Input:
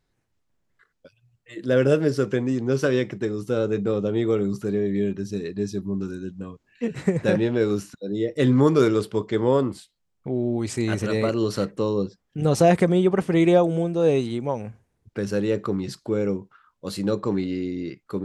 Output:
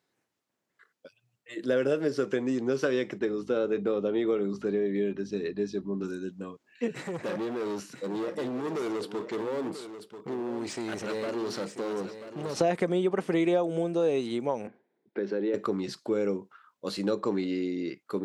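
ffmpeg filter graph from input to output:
ffmpeg -i in.wav -filter_complex "[0:a]asettb=1/sr,asplit=3[link_01][link_02][link_03];[link_01]atrim=end=3.194[link_04];[link_02]atrim=start=3.19:end=6.04,asetpts=PTS-STARTPTS,afade=type=in:duration=0.004:curve=qsin,afade=type=out:start_time=2.846:duration=0.004:curve=qsin,highpass=150,lowpass=4200,aeval=exprs='val(0)+0.0141*(sin(2*PI*50*n/s)+sin(2*PI*2*50*n/s)/2+sin(2*PI*3*50*n/s)/3+sin(2*PI*4*50*n/s)/4+sin(2*PI*5*50*n/s)/5)':channel_layout=same[link_05];[link_03]atrim=start=6.036[link_06];[link_04][link_05]acrossfade=duration=0.004:curve1=hsin:curve2=qsin[link_07];[link_07][link_06]acrossfade=duration=0.004:curve1=qsin:curve2=hsin,asettb=1/sr,asplit=3[link_08][link_09][link_10];[link_08]atrim=end=6.914[link_11];[link_09]atrim=start=6.91:end=12.57,asetpts=PTS-STARTPTS,afade=type=in:duration=0.004:curve=qsin,afade=type=out:start_time=5.656:duration=0.004:curve=qsin,acompressor=threshold=-22dB:ratio=12:attack=3.2:release=140:knee=1:detection=peak,asoftclip=type=hard:threshold=-27.5dB,aecho=1:1:988:0.282,atrim=end_sample=249606[link_12];[link_10]atrim=start=12.566[link_13];[link_11][link_12]acrossfade=duration=0.004:curve1=hsin:curve2=qsin[link_14];[link_14][link_13]acrossfade=duration=0.004:curve1=qsin:curve2=hsin,asettb=1/sr,asplit=3[link_15][link_16][link_17];[link_15]atrim=end=14.674[link_18];[link_16]atrim=start=14.67:end=15.54,asetpts=PTS-STARTPTS,afade=type=in:duration=0.004:curve=qsin,afade=type=out:start_time=0.866:duration=0.004:curve=qsin,acompressor=threshold=-25dB:ratio=4:attack=3.2:release=140:knee=1:detection=peak,highpass=frequency=180:width=0.5412,highpass=frequency=180:width=1.3066,equalizer=frequency=370:width_type=q:width=4:gain=7,equalizer=frequency=1200:width_type=q:width=4:gain=-8,equalizer=frequency=2800:width_type=q:width=4:gain=-9,lowpass=frequency=3500:width=0.5412,lowpass=frequency=3500:width=1.3066[link_19];[link_17]atrim=start=15.536[link_20];[link_18][link_19]acrossfade=duration=0.004:curve1=hsin:curve2=qsin[link_21];[link_21][link_20]acrossfade=duration=0.004:curve1=qsin:curve2=hsin,acrossover=split=6000[link_22][link_23];[link_23]acompressor=threshold=-51dB:ratio=4:attack=1:release=60[link_24];[link_22][link_24]amix=inputs=2:normalize=0,highpass=250,acompressor=threshold=-24dB:ratio=3" out.wav

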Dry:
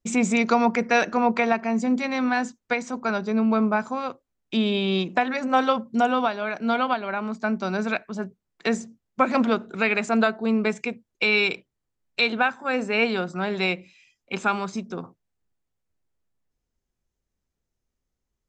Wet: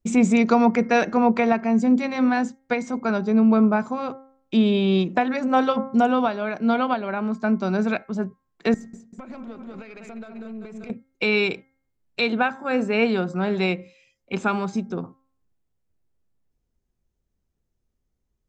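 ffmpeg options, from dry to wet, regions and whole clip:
ffmpeg -i in.wav -filter_complex "[0:a]asettb=1/sr,asplit=3[link_01][link_02][link_03];[link_01]atrim=end=8.744[link_04];[link_02]atrim=start=8.74:end=10.9,asetpts=PTS-STARTPTS,afade=type=in:duration=0.004:curve=qsin,afade=type=out:start_time=2.156:duration=0.004:curve=qsin,aecho=1:1:193|386|579|772|965:0.316|0.149|0.0699|0.0328|0.0154,atrim=end_sample=95256,acompressor=threshold=-33dB:ratio=10:attack=3.2:release=140:knee=1:detection=peak,aeval=exprs='(tanh(14.1*val(0)+0.7)-tanh(0.7))/14.1':channel_layout=same[link_05];[link_03]atrim=start=10.896[link_06];[link_04][link_05]acrossfade=duration=0.004:curve1=hsin:curve2=qsin[link_07];[link_07][link_06]acrossfade=duration=0.004:curve1=qsin:curve2=hsin,tiltshelf=frequency=650:gain=4.5,bandreject=frequency=266.8:width_type=h:width=4,bandreject=frequency=533.6:width_type=h:width=4,bandreject=frequency=800.4:width_type=h:width=4,bandreject=frequency=1067.2:width_type=h:width=4,bandreject=frequency=1334:width_type=h:width=4,bandreject=frequency=1600.8:width_type=h:width=4,bandreject=frequency=1867.6:width_type=h:width=4,bandreject=frequency=2134.4:width_type=h:width=4,volume=1.5dB" out.wav

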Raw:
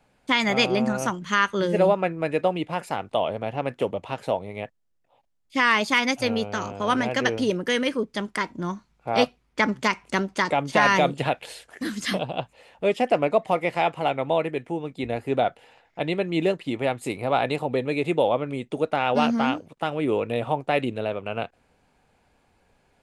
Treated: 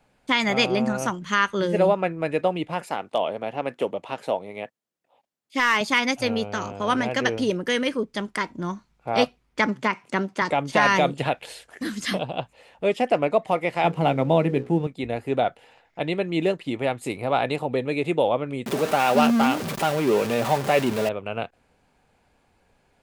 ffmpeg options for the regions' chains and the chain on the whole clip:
ffmpeg -i in.wav -filter_complex "[0:a]asettb=1/sr,asplit=3[link_01][link_02][link_03];[link_01]atrim=end=2.844[link_04];[link_02]atrim=start=2.84:end=5.81,asetpts=PTS-STARTPTS,afade=type=in:duration=0.004:curve=qsin,afade=type=out:start_time=2.966:duration=0.004:curve=qsin,highpass=200,asoftclip=type=hard:threshold=-11.5dB[link_05];[link_03]atrim=start=5.806[link_06];[link_04][link_05]acrossfade=duration=0.004:curve1=hsin:curve2=qsin[link_07];[link_07][link_06]acrossfade=duration=0.004:curve1=qsin:curve2=hsin,asettb=1/sr,asplit=3[link_08][link_09][link_10];[link_08]atrim=end=9.664[link_11];[link_09]atrim=start=9.66:end=10.42,asetpts=PTS-STARTPTS,afade=type=in:duration=0.004:curve=qsin,afade=type=out:start_time=0.756:duration=0.004:curve=qsin,highpass=frequency=110:width=0.5412,highpass=frequency=110:width=1.3066,acrossover=split=2800[link_12][link_13];[link_13]acompressor=threshold=-42dB:ratio=4:attack=1:release=60[link_14];[link_12][link_14]amix=inputs=2:normalize=0[link_15];[link_10]atrim=start=10.416[link_16];[link_11][link_15]acrossfade=duration=0.004:curve1=hsin:curve2=qsin[link_17];[link_17][link_16]acrossfade=duration=0.004:curve1=qsin:curve2=hsin,asettb=1/sr,asplit=3[link_18][link_19][link_20];[link_18]atrim=end=13.844[link_21];[link_19]atrim=start=13.84:end=14.87,asetpts=PTS-STARTPTS,afade=type=in:duration=0.004:curve=qsin,afade=type=out:start_time=1.026:duration=0.004:curve=qsin,equalizer=frequency=180:width=0.68:gain=13,bandreject=frequency=60:width_type=h:width=6,bandreject=frequency=120:width_type=h:width=6,bandreject=frequency=180:width_type=h:width=6,bandreject=frequency=240:width_type=h:width=6,bandreject=frequency=300:width_type=h:width=6,bandreject=frequency=360:width_type=h:width=6,bandreject=frequency=420:width_type=h:width=6,bandreject=frequency=480:width_type=h:width=6,bandreject=frequency=540:width_type=h:width=6,aeval=exprs='sgn(val(0))*max(abs(val(0))-0.00316,0)':channel_layout=same[link_22];[link_20]atrim=start=14.866[link_23];[link_21][link_22]acrossfade=duration=0.004:curve1=hsin:curve2=qsin[link_24];[link_24][link_23]acrossfade=duration=0.004:curve1=qsin:curve2=hsin,asettb=1/sr,asplit=3[link_25][link_26][link_27];[link_25]atrim=end=18.664[link_28];[link_26]atrim=start=18.66:end=21.09,asetpts=PTS-STARTPTS,afade=type=in:duration=0.004:curve=qsin,afade=type=out:start_time=2.426:duration=0.004:curve=qsin,aeval=exprs='val(0)+0.5*0.0631*sgn(val(0))':channel_layout=same,highpass=100,aecho=1:1:5.1:0.34,atrim=end_sample=107163[link_29];[link_27]atrim=start=21.086[link_30];[link_28][link_29]acrossfade=duration=0.004:curve1=hsin:curve2=qsin[link_31];[link_31][link_30]acrossfade=duration=0.004:curve1=qsin:curve2=hsin" out.wav

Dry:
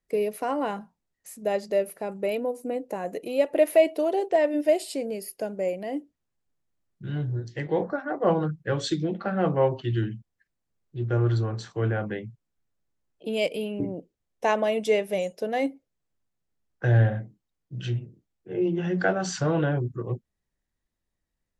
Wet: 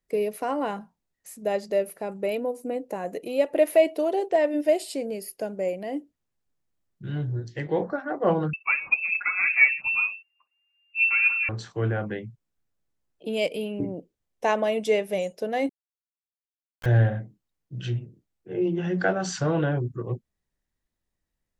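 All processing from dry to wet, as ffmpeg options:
ffmpeg -i in.wav -filter_complex "[0:a]asettb=1/sr,asplit=3[link_01][link_02][link_03];[link_01]atrim=end=8.534[link_04];[link_02]atrim=start=8.53:end=11.49,asetpts=PTS-STARTPTS,afade=type=in:duration=0.004:curve=qsin,afade=type=out:start_time=2.956:duration=0.004:curve=qsin,aphaser=in_gain=1:out_gain=1:delay=3.8:decay=0.62:speed=1.6:type=triangular,lowpass=frequency=2400:width_type=q:width=0.5098,lowpass=frequency=2400:width_type=q:width=0.6013,lowpass=frequency=2400:width_type=q:width=0.9,lowpass=frequency=2400:width_type=q:width=2.563,afreqshift=-2800[link_05];[link_03]atrim=start=11.486[link_06];[link_04][link_05]acrossfade=duration=0.004:curve1=hsin:curve2=qsin[link_07];[link_07][link_06]acrossfade=duration=0.004:curve1=qsin:curve2=hsin,asettb=1/sr,asplit=3[link_08][link_09][link_10];[link_08]atrim=end=15.694[link_11];[link_09]atrim=start=15.69:end=16.86,asetpts=PTS-STARTPTS,afade=type=in:duration=0.004:curve=qsin,afade=type=out:start_time=1.166:duration=0.004:curve=qsin,bandpass=frequency=1700:width_type=q:width=0.66,acrusher=bits=4:dc=4:mix=0:aa=0.000001[link_12];[link_10]atrim=start=16.856[link_13];[link_11][link_12]acrossfade=duration=0.004:curve1=hsin:curve2=qsin[link_14];[link_14][link_13]acrossfade=duration=0.004:curve1=qsin:curve2=hsin" out.wav

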